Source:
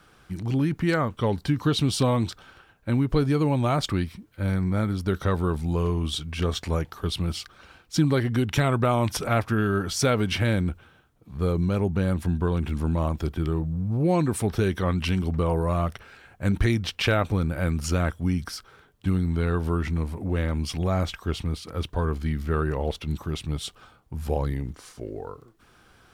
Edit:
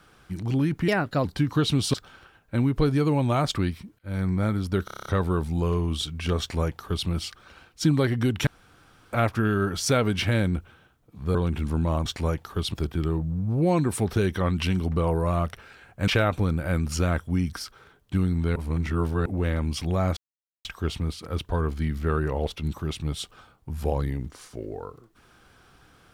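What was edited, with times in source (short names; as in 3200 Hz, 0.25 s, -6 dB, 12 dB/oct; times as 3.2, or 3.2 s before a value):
0.88–1.34 speed 125%
2.03–2.28 cut
4.33–4.6 fade in, from -23.5 dB
5.19 stutter 0.03 s, 8 plays
6.53–7.21 copy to 13.16
8.6–9.26 room tone
11.48–12.45 cut
16.5–17 cut
19.48–20.18 reverse
21.09 insert silence 0.48 s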